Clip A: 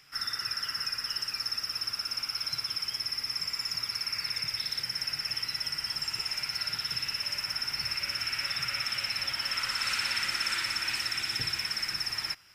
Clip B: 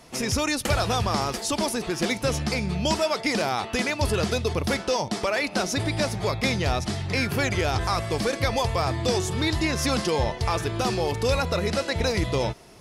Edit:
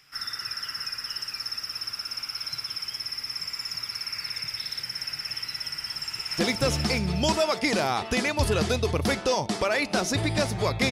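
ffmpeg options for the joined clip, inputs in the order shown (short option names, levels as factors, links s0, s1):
-filter_complex "[0:a]apad=whole_dur=10.91,atrim=end=10.91,atrim=end=6.382[s0];[1:a]atrim=start=1.998:end=6.53[s1];[s0][s1]acrossfade=d=0.004:c1=hsin:c2=hsin,asplit=2[s2][s3];[s3]afade=t=in:st=5.7:d=0.01,afade=t=out:st=6.38:d=0.01,aecho=0:1:600|1200|1800|2400|3000:0.891251|0.311938|0.109178|0.0382124|0.0133743[s4];[s2][s4]amix=inputs=2:normalize=0"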